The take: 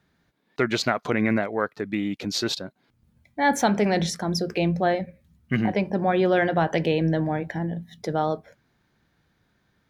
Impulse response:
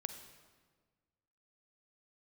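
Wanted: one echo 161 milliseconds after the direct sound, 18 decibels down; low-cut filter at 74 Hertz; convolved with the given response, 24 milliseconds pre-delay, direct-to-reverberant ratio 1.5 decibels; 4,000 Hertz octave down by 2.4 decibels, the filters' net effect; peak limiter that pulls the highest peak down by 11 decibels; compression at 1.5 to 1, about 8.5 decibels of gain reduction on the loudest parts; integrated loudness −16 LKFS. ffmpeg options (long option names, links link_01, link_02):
-filter_complex "[0:a]highpass=74,equalizer=frequency=4000:width_type=o:gain=-3,acompressor=threshold=-41dB:ratio=1.5,alimiter=level_in=2dB:limit=-24dB:level=0:latency=1,volume=-2dB,aecho=1:1:161:0.126,asplit=2[link_01][link_02];[1:a]atrim=start_sample=2205,adelay=24[link_03];[link_02][link_03]afir=irnorm=-1:irlink=0,volume=0dB[link_04];[link_01][link_04]amix=inputs=2:normalize=0,volume=17.5dB"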